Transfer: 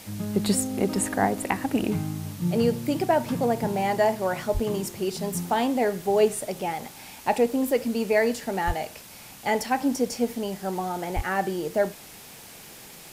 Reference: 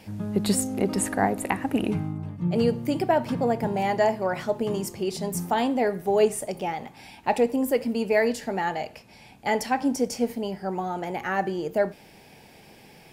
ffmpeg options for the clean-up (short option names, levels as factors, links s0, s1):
-filter_complex "[0:a]asplit=3[s0][s1][s2];[s0]afade=t=out:st=4.53:d=0.02[s3];[s1]highpass=f=140:w=0.5412,highpass=f=140:w=1.3066,afade=t=in:st=4.53:d=0.02,afade=t=out:st=4.65:d=0.02[s4];[s2]afade=t=in:st=4.65:d=0.02[s5];[s3][s4][s5]amix=inputs=3:normalize=0,asplit=3[s6][s7][s8];[s6]afade=t=out:st=8.66:d=0.02[s9];[s7]highpass=f=140:w=0.5412,highpass=f=140:w=1.3066,afade=t=in:st=8.66:d=0.02,afade=t=out:st=8.78:d=0.02[s10];[s8]afade=t=in:st=8.78:d=0.02[s11];[s9][s10][s11]amix=inputs=3:normalize=0,asplit=3[s12][s13][s14];[s12]afade=t=out:st=11.15:d=0.02[s15];[s13]highpass=f=140:w=0.5412,highpass=f=140:w=1.3066,afade=t=in:st=11.15:d=0.02,afade=t=out:st=11.27:d=0.02[s16];[s14]afade=t=in:st=11.27:d=0.02[s17];[s15][s16][s17]amix=inputs=3:normalize=0,afwtdn=0.0056"